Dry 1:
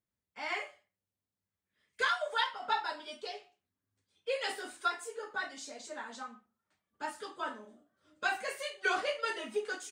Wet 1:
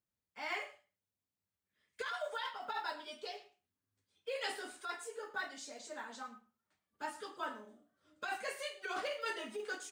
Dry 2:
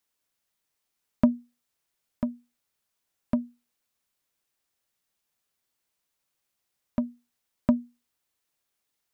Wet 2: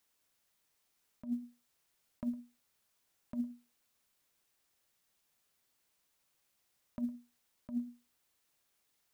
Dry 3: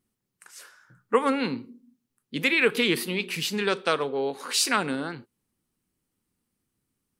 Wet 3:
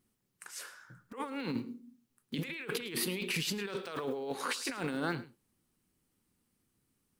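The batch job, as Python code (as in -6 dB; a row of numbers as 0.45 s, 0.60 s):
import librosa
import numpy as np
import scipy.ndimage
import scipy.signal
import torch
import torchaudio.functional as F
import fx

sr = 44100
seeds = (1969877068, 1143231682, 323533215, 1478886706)

y = fx.block_float(x, sr, bits=7)
y = fx.over_compress(y, sr, threshold_db=-33.0, ratio=-1.0)
y = y + 10.0 ** (-17.5 / 20.0) * np.pad(y, (int(107 * sr / 1000.0), 0))[:len(y)]
y = F.gain(torch.from_numpy(y), -4.5).numpy()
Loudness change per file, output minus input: -6.0 LU, -12.0 LU, -11.5 LU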